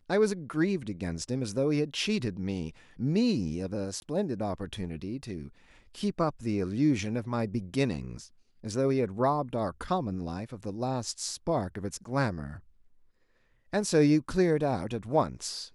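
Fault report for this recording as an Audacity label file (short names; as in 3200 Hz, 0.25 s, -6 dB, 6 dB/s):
4.000000	4.020000	gap 21 ms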